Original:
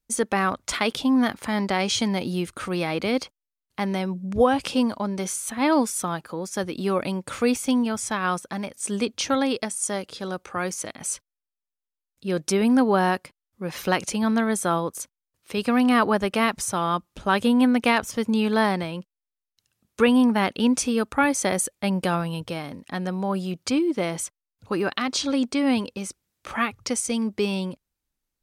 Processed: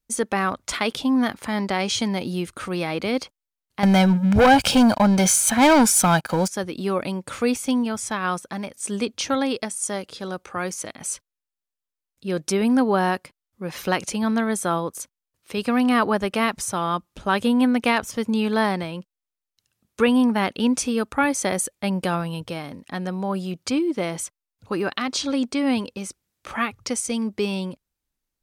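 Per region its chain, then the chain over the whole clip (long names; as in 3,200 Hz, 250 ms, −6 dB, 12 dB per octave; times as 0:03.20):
0:03.83–0:06.48: leveller curve on the samples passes 3 + comb filter 1.3 ms, depth 50%
whole clip: no processing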